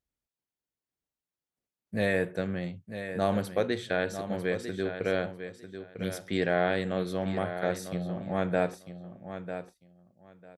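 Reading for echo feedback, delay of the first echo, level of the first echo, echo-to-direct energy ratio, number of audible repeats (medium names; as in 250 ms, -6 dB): 17%, 948 ms, -10.0 dB, -10.0 dB, 2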